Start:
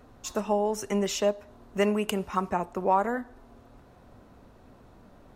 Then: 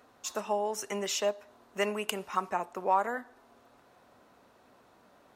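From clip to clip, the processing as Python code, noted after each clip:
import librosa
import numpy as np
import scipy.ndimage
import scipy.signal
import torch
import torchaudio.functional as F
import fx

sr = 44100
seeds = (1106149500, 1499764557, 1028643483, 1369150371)

y = fx.highpass(x, sr, hz=770.0, slope=6)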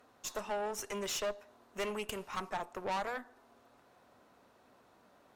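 y = fx.tube_stage(x, sr, drive_db=31.0, bias=0.65)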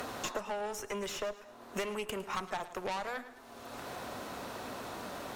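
y = fx.rider(x, sr, range_db=3, speed_s=0.5)
y = fx.echo_feedback(y, sr, ms=107, feedback_pct=28, wet_db=-16.5)
y = fx.band_squash(y, sr, depth_pct=100)
y = F.gain(torch.from_numpy(y), 1.0).numpy()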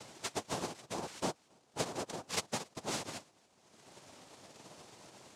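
y = fx.noise_vocoder(x, sr, seeds[0], bands=2)
y = y + 10.0 ** (-13.5 / 20.0) * np.pad(y, (int(279 * sr / 1000.0), 0))[:len(y)]
y = fx.upward_expand(y, sr, threshold_db=-46.0, expansion=2.5)
y = F.gain(torch.from_numpy(y), 2.0).numpy()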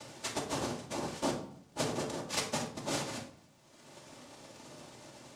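y = fx.dmg_crackle(x, sr, seeds[1], per_s=410.0, level_db=-63.0)
y = fx.room_shoebox(y, sr, seeds[2], volume_m3=840.0, walls='furnished', distance_m=2.5)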